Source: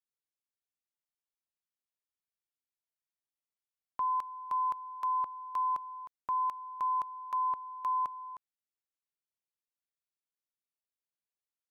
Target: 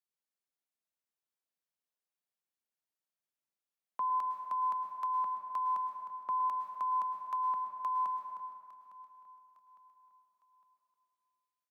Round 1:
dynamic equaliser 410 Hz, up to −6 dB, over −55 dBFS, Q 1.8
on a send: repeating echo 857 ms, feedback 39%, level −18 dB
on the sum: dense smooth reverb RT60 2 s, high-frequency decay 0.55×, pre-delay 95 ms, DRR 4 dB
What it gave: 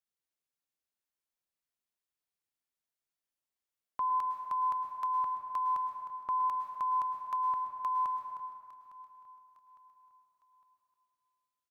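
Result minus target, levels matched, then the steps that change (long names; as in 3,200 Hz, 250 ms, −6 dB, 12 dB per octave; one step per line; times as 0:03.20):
125 Hz band +5.5 dB
add after dynamic equaliser: Chebyshev high-pass with heavy ripple 150 Hz, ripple 3 dB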